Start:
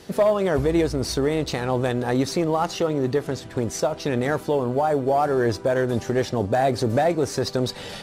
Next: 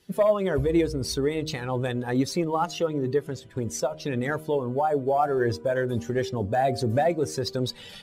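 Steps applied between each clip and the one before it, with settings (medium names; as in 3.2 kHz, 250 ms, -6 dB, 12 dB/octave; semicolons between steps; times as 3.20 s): expander on every frequency bin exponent 1.5; de-hum 77.75 Hz, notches 9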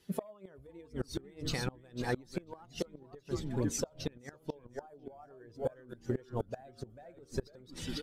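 frequency-shifting echo 496 ms, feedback 38%, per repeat -140 Hz, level -8 dB; inverted gate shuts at -17 dBFS, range -27 dB; trim -4 dB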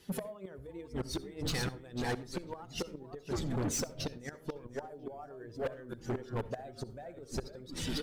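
saturation -36.5 dBFS, distortion -6 dB; on a send at -17.5 dB: reverberation RT60 0.35 s, pre-delay 59 ms; on the sum: trim +6.5 dB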